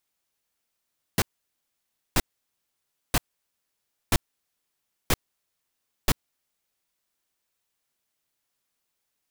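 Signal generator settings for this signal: noise bursts pink, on 0.04 s, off 0.94 s, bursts 6, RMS -19.5 dBFS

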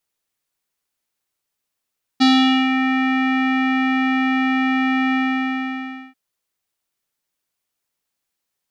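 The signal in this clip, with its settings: synth note square C4 12 dB/octave, low-pass 2.2 kHz, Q 3.6, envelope 1 oct, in 0.58 s, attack 18 ms, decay 0.46 s, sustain -6.5 dB, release 1.00 s, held 2.94 s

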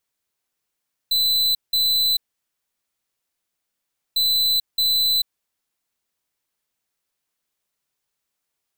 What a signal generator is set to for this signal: beep pattern square 4.01 kHz, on 0.44 s, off 0.18 s, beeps 2, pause 1.99 s, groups 2, -19 dBFS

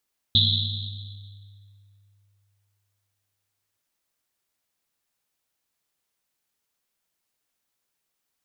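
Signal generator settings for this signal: Risset drum length 3.43 s, pitch 100 Hz, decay 3.00 s, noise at 3.7 kHz, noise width 730 Hz, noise 55%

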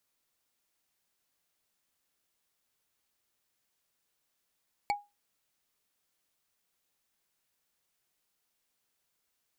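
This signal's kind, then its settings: wood hit, lowest mode 820 Hz, decay 0.23 s, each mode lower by 4.5 dB, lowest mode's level -23 dB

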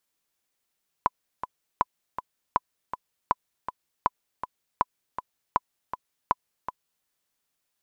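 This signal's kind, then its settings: metronome 160 bpm, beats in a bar 2, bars 8, 1 kHz, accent 10.5 dB -7.5 dBFS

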